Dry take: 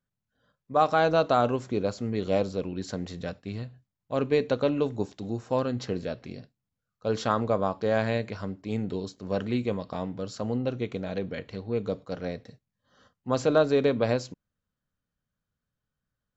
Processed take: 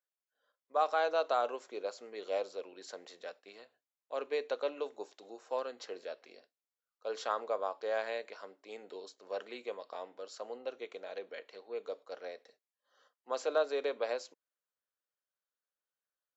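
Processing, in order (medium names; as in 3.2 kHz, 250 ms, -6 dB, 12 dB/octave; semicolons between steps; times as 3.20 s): high-pass 440 Hz 24 dB/octave; trim -7.5 dB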